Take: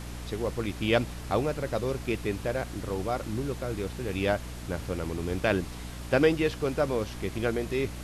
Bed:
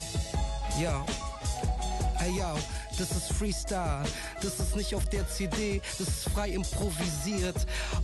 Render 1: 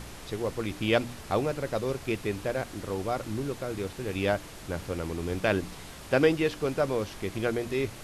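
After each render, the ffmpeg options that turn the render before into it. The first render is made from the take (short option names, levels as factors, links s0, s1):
-af "bandreject=f=60:t=h:w=4,bandreject=f=120:t=h:w=4,bandreject=f=180:t=h:w=4,bandreject=f=240:t=h:w=4,bandreject=f=300:t=h:w=4"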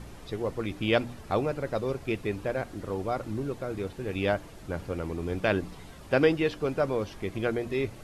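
-af "afftdn=nr=9:nf=-45"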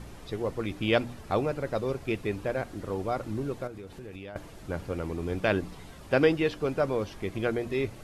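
-filter_complex "[0:a]asettb=1/sr,asplit=3[s0][s1][s2];[s0]atrim=end=3.674[s3];[s1]atrim=start=3.67:end=4.36,asetpts=PTS-STARTPTS,afade=t=in:d=0.004:c=qsin,afade=t=out:st=0.686:d=0.004:c=qsin,acompressor=threshold=0.0126:ratio=10:attack=3.2:release=140:knee=1:detection=peak[s4];[s2]atrim=start=4.356[s5];[s3][s4]acrossfade=d=0.004:c1=hsin:c2=qsin[s6];[s6][s5]acrossfade=d=0.004:c1=qsin:c2=hsin"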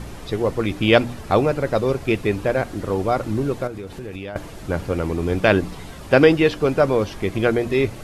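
-af "volume=3.16,alimiter=limit=0.891:level=0:latency=1"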